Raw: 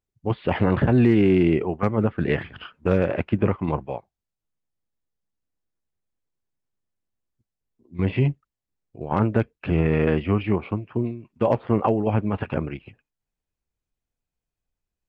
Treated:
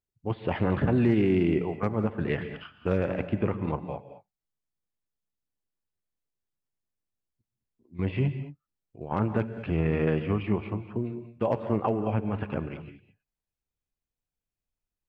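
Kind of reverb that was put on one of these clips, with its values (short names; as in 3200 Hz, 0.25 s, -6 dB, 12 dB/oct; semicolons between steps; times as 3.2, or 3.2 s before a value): non-linear reverb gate 0.24 s rising, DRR 10.5 dB; gain -6 dB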